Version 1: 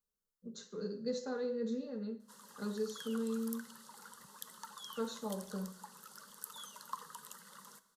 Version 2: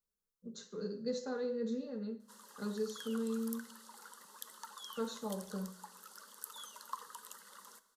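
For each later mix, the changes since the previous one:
background: add HPF 250 Hz 24 dB/oct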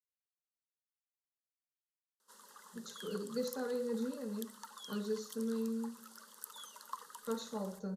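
speech: entry +2.30 s; background: send -10.0 dB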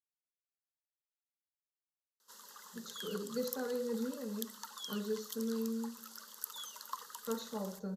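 background: add high shelf 2800 Hz +10 dB; master: add bell 9400 Hz -13 dB 0.36 oct

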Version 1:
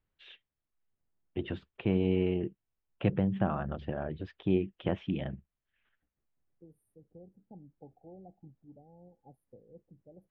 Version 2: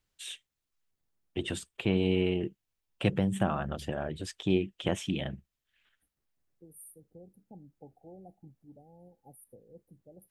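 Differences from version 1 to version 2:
first voice: remove air absorption 170 m; master: remove air absorption 340 m

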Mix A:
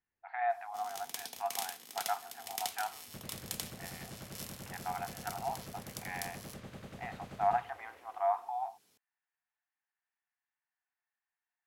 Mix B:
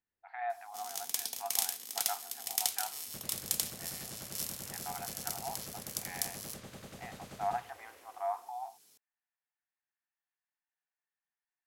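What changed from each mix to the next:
speech -4.5 dB; master: add tone controls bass -3 dB, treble +9 dB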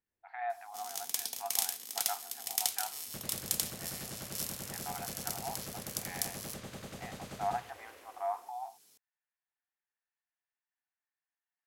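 second sound +3.5 dB

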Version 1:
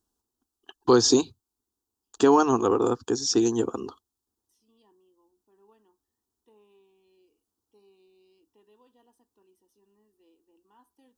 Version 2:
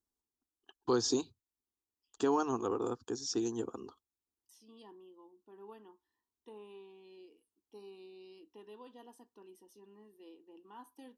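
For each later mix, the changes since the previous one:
first voice -12.0 dB; second voice +9.0 dB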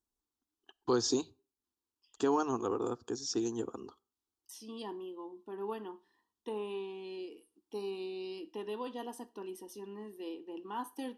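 second voice +11.5 dB; reverb: on, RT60 0.40 s

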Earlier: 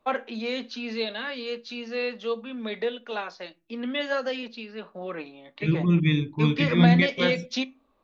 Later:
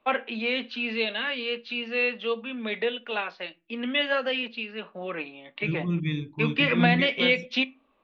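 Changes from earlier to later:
first voice: add synth low-pass 2800 Hz, resonance Q 2.7; second voice -6.5 dB

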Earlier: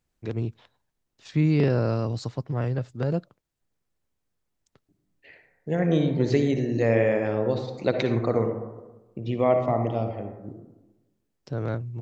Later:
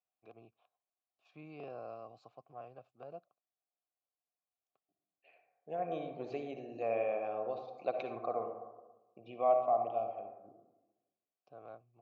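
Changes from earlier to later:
first voice -7.0 dB; master: add vowel filter a

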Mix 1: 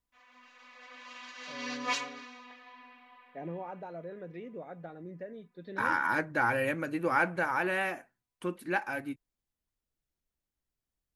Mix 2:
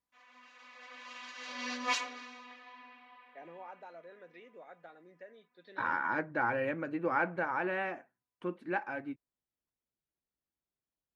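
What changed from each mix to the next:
first voice: add HPF 1300 Hz 6 dB/oct; second voice: add tape spacing loss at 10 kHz 28 dB; master: add HPF 200 Hz 6 dB/oct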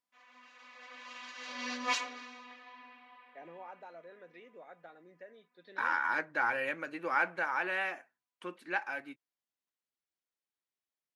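second voice: add tilt +4.5 dB/oct

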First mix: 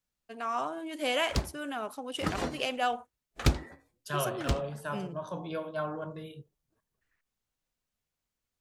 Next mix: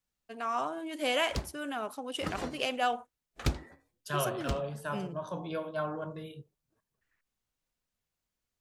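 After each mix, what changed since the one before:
background -5.0 dB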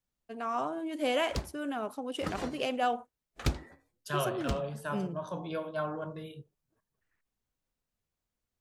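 first voice: add tilt shelf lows +4.5 dB, about 810 Hz

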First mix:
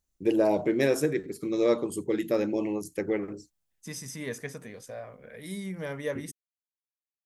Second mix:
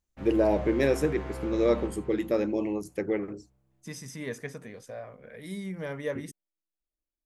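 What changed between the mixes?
background: unmuted; master: add high shelf 5100 Hz -7 dB

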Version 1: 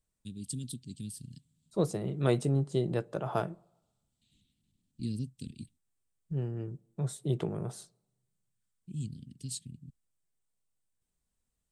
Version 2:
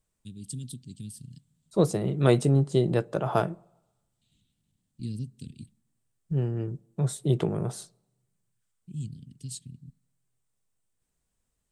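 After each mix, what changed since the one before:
first voice: send on; second voice +6.5 dB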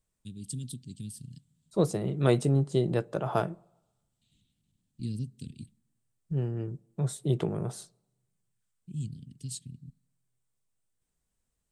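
second voice -3.0 dB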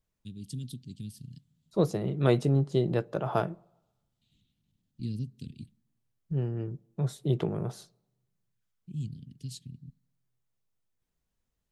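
master: add bell 8400 Hz -12.5 dB 0.43 oct

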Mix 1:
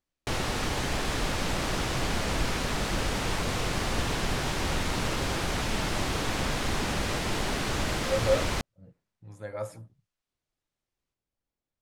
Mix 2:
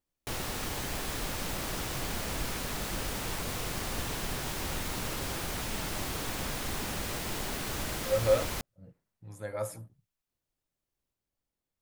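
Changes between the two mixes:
background -7.0 dB; master: remove air absorption 57 m

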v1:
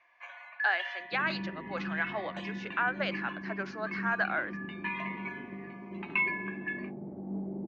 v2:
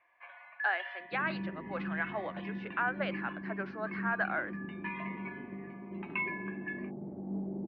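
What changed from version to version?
first sound: send off; master: add air absorption 360 m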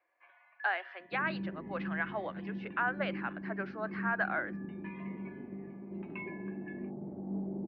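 first sound -10.5 dB

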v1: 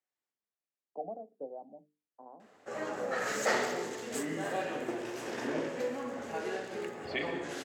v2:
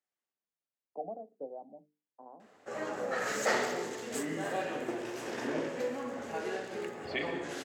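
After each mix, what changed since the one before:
none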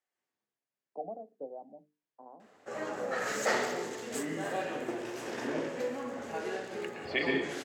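second voice: send +11.5 dB

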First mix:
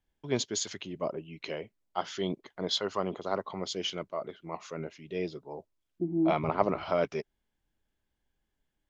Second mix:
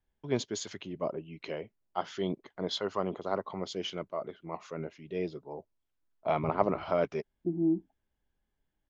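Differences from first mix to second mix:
second voice: entry +1.45 s; master: add high shelf 2800 Hz -8 dB

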